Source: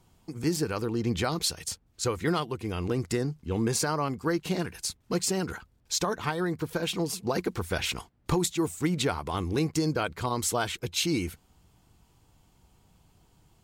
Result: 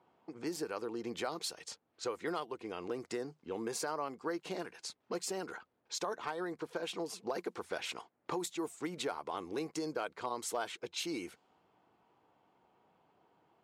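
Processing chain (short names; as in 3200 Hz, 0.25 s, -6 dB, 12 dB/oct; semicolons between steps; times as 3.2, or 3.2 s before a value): low-pass opened by the level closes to 2200 Hz, open at -24 dBFS; HPF 490 Hz 12 dB/oct; tilt shelf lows +5 dB, about 1100 Hz; compressor 1.5:1, threshold -47 dBFS, peak gain reduction 8.5 dB; overloaded stage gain 25.5 dB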